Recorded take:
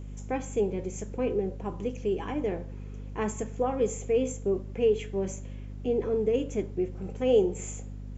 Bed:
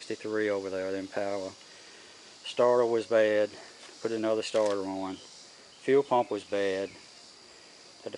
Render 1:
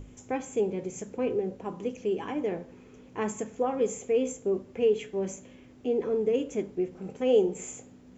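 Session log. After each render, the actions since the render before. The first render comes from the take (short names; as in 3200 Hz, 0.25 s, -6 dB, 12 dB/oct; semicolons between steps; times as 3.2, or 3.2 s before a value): notches 50/100/150/200 Hz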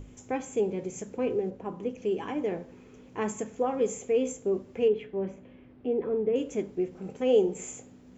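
1.5–2.02 high shelf 3600 Hz -10.5 dB; 4.88–6.36 air absorption 370 m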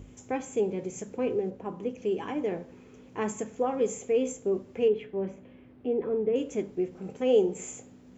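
HPF 46 Hz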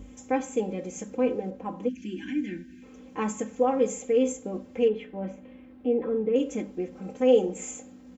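comb 3.8 ms, depth 88%; 1.89–2.83 spectral gain 390–1400 Hz -27 dB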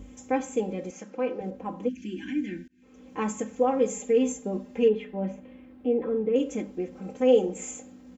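0.91–1.41 speaker cabinet 230–5600 Hz, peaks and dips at 260 Hz -5 dB, 430 Hz -6 dB, 1400 Hz +4 dB, 3600 Hz -4 dB; 2.68–3.13 fade in; 3.94–5.4 comb 4.9 ms, depth 60%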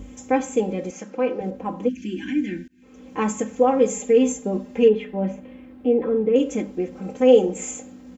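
gain +6 dB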